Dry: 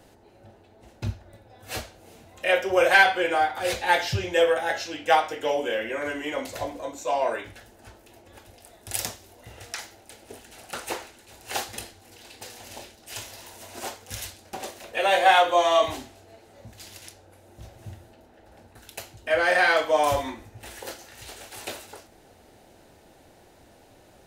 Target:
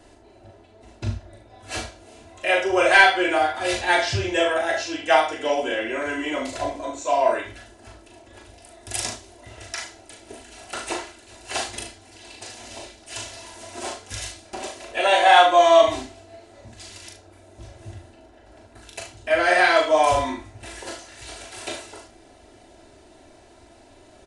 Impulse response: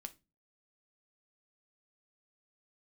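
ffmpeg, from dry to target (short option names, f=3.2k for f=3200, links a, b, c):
-filter_complex "[0:a]aecho=1:1:3:0.57,asplit=2[a][b];[b]aecho=0:1:39|73:0.596|0.299[c];[a][c]amix=inputs=2:normalize=0,aresample=22050,aresample=44100,volume=1dB"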